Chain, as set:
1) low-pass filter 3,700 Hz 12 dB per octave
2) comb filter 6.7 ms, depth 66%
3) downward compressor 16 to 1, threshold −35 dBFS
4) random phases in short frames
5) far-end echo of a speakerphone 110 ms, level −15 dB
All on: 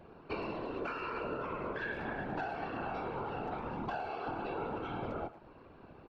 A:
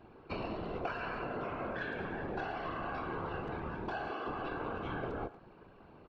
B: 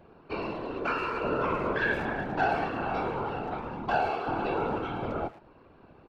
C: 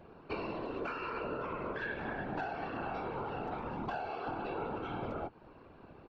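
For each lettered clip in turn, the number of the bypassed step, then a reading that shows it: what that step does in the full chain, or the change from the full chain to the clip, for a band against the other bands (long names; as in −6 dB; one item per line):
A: 2, 125 Hz band +1.5 dB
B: 3, average gain reduction 6.0 dB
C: 5, echo-to-direct ratio −22.0 dB to none audible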